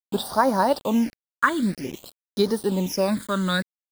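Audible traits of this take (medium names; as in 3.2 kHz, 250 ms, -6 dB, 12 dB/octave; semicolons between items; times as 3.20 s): a quantiser's noise floor 6-bit, dither none; phasing stages 8, 0.52 Hz, lowest notch 740–2600 Hz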